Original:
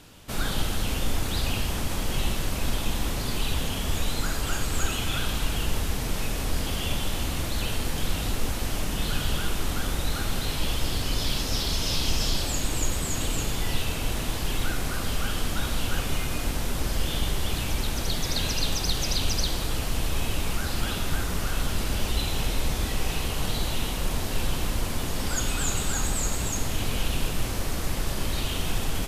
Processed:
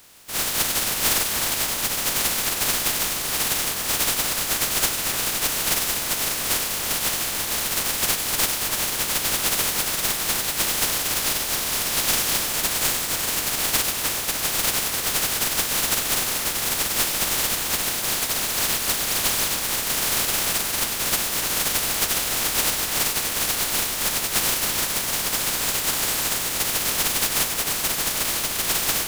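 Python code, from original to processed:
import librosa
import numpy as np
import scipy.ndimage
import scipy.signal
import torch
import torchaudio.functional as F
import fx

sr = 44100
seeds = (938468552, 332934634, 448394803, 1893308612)

y = fx.spec_flatten(x, sr, power=0.11)
y = fx.echo_split(y, sr, split_hz=2100.0, low_ms=298, high_ms=98, feedback_pct=52, wet_db=-9.0)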